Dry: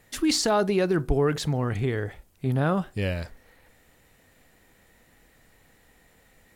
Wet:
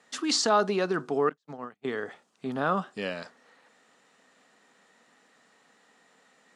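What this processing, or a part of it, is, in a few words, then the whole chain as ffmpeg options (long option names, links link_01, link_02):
television speaker: -filter_complex "[0:a]asettb=1/sr,asplit=3[link_01][link_02][link_03];[link_01]atrim=end=1.294[link_04];[link_02]atrim=start=1.29:end=1.85,asetpts=PTS-STARTPTS,afade=type=in:duration=0.004:curve=qsin,afade=type=out:start_time=0.556:duration=0.004:curve=qsin,agate=range=-48dB:threshold=-23dB:ratio=16:detection=peak[link_05];[link_03]atrim=start=1.846[link_06];[link_04][link_05]acrossfade=duration=0.004:curve1=hsin:curve2=qsin[link_07];[link_07][link_06]acrossfade=duration=0.004:curve1=qsin:curve2=hsin,highpass=frequency=220:width=0.5412,highpass=frequency=220:width=1.3066,equalizer=frequency=330:width_type=q:width=4:gain=-8,equalizer=frequency=540:width_type=q:width=4:gain=-3,equalizer=frequency=1200:width_type=q:width=4:gain=6,equalizer=frequency=2200:width_type=q:width=4:gain=-5,lowpass=frequency=7800:width=0.5412,lowpass=frequency=7800:width=1.3066"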